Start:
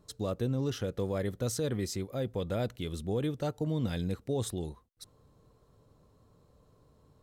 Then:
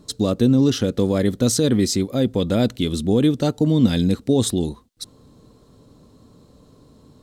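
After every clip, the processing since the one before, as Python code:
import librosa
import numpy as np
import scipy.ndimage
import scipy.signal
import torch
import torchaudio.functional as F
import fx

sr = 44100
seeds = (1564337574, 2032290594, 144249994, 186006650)

y = fx.graphic_eq(x, sr, hz=(250, 4000, 8000), db=(11, 7, 5))
y = y * librosa.db_to_amplitude(9.0)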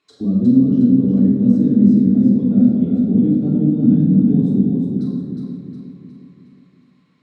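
y = fx.auto_wah(x, sr, base_hz=220.0, top_hz=2500.0, q=4.9, full_db=-22.0, direction='down')
y = fx.echo_feedback(y, sr, ms=361, feedback_pct=48, wet_db=-4.5)
y = fx.room_shoebox(y, sr, seeds[0], volume_m3=1300.0, walls='mixed', distance_m=3.4)
y = y * librosa.db_to_amplitude(2.0)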